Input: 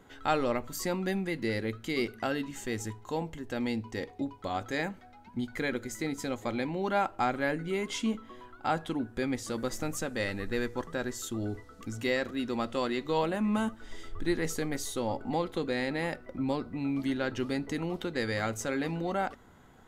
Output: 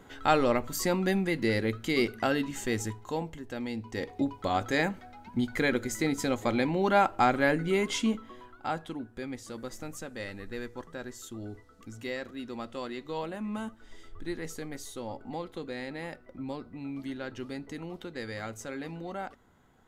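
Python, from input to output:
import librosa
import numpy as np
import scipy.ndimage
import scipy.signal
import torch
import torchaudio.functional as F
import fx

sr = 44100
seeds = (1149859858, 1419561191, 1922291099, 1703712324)

y = fx.gain(x, sr, db=fx.line((2.73, 4.0), (3.69, -4.0), (4.18, 5.0), (7.81, 5.0), (9.1, -6.5)))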